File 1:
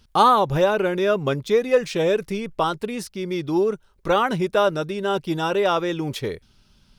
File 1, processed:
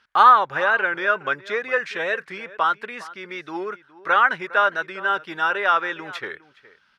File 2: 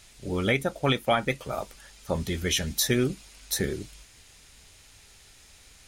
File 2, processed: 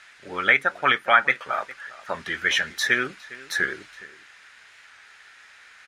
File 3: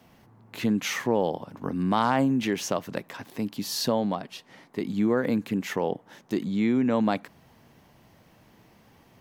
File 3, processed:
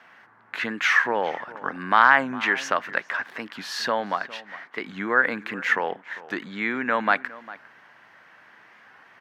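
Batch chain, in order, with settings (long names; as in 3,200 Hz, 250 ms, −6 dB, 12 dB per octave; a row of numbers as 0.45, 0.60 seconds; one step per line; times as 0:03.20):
resonant band-pass 1,600 Hz, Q 3.2
slap from a distant wall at 70 metres, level −18 dB
wow of a warped record 45 rpm, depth 100 cents
normalise the peak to −1.5 dBFS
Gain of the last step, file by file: +11.5, +16.5, +17.5 decibels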